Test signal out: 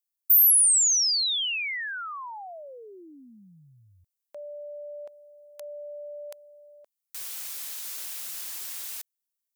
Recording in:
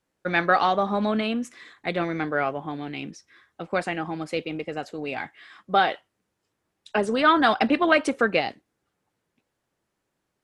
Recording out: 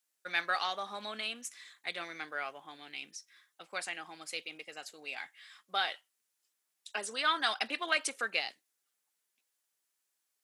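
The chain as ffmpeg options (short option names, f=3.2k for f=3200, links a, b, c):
-af "aderivative,volume=3.5dB"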